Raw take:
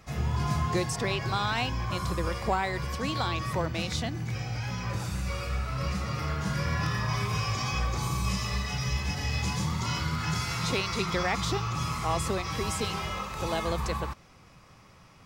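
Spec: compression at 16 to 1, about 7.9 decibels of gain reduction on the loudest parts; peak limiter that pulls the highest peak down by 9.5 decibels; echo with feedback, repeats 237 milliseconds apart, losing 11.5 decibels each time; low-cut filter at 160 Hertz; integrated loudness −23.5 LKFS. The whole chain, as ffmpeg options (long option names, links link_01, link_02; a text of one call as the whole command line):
ffmpeg -i in.wav -af "highpass=160,acompressor=threshold=-31dB:ratio=16,alimiter=level_in=7.5dB:limit=-24dB:level=0:latency=1,volume=-7.5dB,aecho=1:1:237|474|711:0.266|0.0718|0.0194,volume=16dB" out.wav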